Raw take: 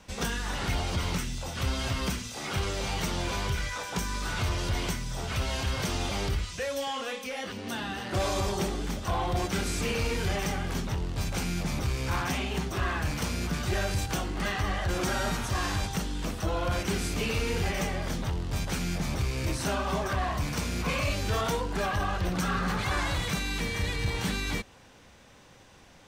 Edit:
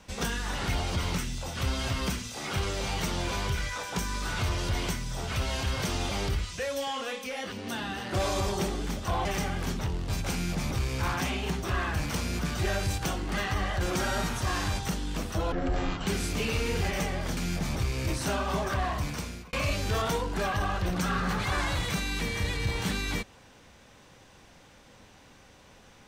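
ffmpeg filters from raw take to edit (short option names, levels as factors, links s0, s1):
-filter_complex "[0:a]asplit=6[s0][s1][s2][s3][s4][s5];[s0]atrim=end=9.252[s6];[s1]atrim=start=10.328:end=16.604[s7];[s2]atrim=start=16.6:end=16.88,asetpts=PTS-STARTPTS,asetrate=22491,aresample=44100[s8];[s3]atrim=start=16.876:end=18.182[s9];[s4]atrim=start=18.758:end=20.92,asetpts=PTS-STARTPTS,afade=t=out:st=1.412:d=0.75:c=qsin[s10];[s5]atrim=start=20.92,asetpts=PTS-STARTPTS,afade=t=in:d=0.004:c=hsin[s11];[s6][s7]acrossfade=d=0.004:c1=hsin:c2=hsin[s12];[s12][s8]acrossfade=d=0.004:c1=hsin:c2=hsin[s13];[s13][s9]acrossfade=d=0.004:c1=hsin:c2=hsin[s14];[s10][s11]concat=n=2:v=0:a=1[s15];[s14][s15]acrossfade=d=0.004:c1=hsin:c2=hsin"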